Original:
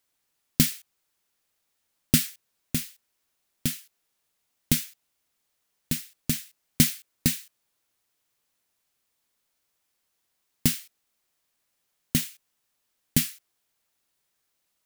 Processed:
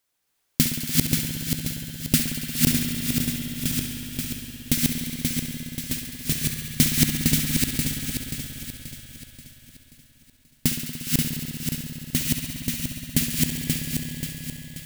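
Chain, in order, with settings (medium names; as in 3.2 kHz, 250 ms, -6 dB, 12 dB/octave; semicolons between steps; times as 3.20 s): backward echo that repeats 266 ms, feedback 68%, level -0.5 dB; thinning echo 69 ms, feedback 82%, high-pass 700 Hz, level -9.5 dB; spring tank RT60 4 s, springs 59 ms, chirp 45 ms, DRR 3.5 dB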